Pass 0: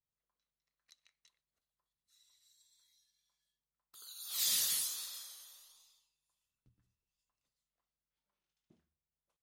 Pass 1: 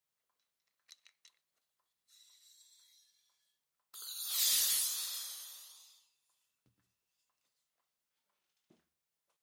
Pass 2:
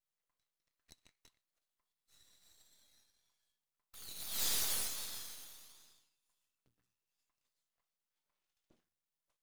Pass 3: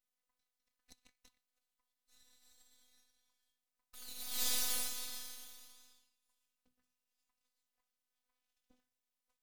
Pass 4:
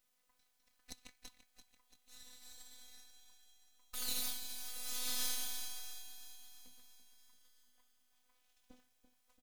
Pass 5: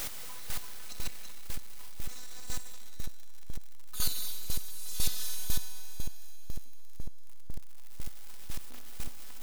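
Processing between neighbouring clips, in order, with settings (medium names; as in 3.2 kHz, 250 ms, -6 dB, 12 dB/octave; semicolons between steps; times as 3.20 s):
high-pass 440 Hz 6 dB/octave; in parallel at +1 dB: compression, threshold -44 dBFS, peak gain reduction 14 dB
half-wave rectifier
robot voice 250 Hz; trim +2 dB
compressor with a negative ratio -46 dBFS, ratio -1; on a send: feedback delay 338 ms, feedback 58%, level -11 dB; on the sum: trim +5 dB
jump at every zero crossing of -35 dBFS; reverberation RT60 1.4 s, pre-delay 63 ms, DRR 6 dB; square tremolo 2 Hz, depth 65%, duty 15%; trim +8 dB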